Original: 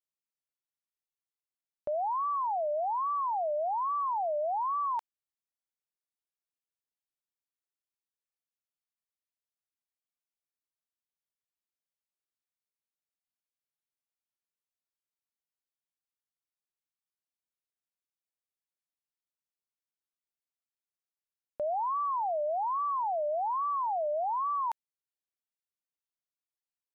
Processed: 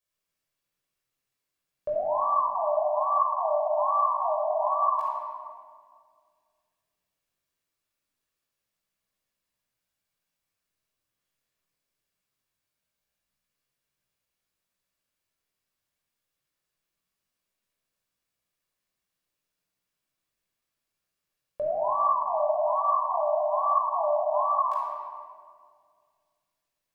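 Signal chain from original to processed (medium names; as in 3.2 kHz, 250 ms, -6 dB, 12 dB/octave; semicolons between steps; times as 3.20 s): chorus voices 2, 0.22 Hz, delay 19 ms, depth 3.8 ms; peak limiter -37.5 dBFS, peak gain reduction 11.5 dB; simulated room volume 3700 m³, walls mixed, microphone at 5.6 m; trim +8 dB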